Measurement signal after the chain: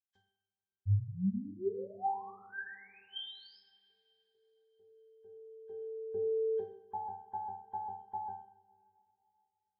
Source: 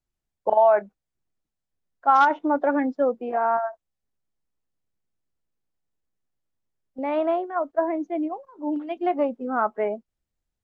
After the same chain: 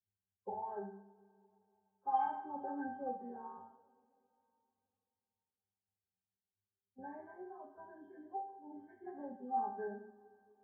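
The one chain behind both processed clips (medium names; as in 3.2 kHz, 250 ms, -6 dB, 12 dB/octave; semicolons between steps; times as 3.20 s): knee-point frequency compression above 1 kHz 1.5:1; pitch-class resonator G, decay 0.39 s; two-slope reverb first 0.57 s, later 3 s, from -22 dB, DRR 1.5 dB; trim +3 dB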